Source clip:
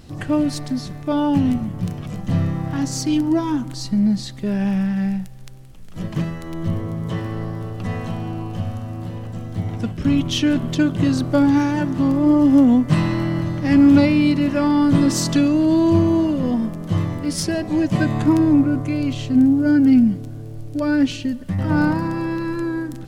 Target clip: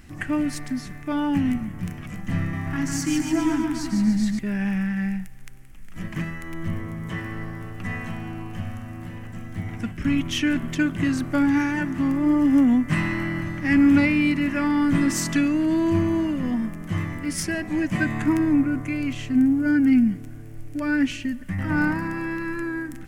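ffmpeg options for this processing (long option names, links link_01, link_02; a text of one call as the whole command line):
ffmpeg -i in.wav -filter_complex "[0:a]equalizer=frequency=125:width_type=o:width=1:gain=-9,equalizer=frequency=500:width_type=o:width=1:gain=-11,equalizer=frequency=1000:width_type=o:width=1:gain=-4,equalizer=frequency=2000:width_type=o:width=1:gain=9,equalizer=frequency=4000:width_type=o:width=1:gain=-11,asettb=1/sr,asplit=3[link_01][link_02][link_03];[link_01]atrim=end=2.384[link_04];[link_02]atrim=start=2.38:end=4.39,asetpts=PTS-STARTPTS,afade=type=in:duration=0.004:curve=qsin,afade=type=out:start_time=2.006:duration=0.004:curve=qsin,aecho=1:1:150|285|406.5|515.8|614.3:0.631|0.398|0.251|0.158|0.1,atrim=end_sample=88641[link_05];[link_03]atrim=start=4.386[link_06];[link_04][link_05]acrossfade=duration=0.004:curve1=hsin:curve2=qsin[link_07];[link_07][link_06]acrossfade=duration=0.004:curve1=qsin:curve2=hsin" out.wav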